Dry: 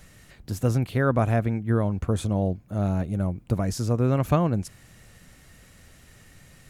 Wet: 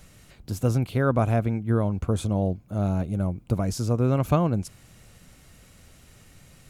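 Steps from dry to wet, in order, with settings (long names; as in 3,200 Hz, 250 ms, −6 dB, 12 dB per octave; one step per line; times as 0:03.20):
parametric band 1,800 Hz −7.5 dB 0.25 octaves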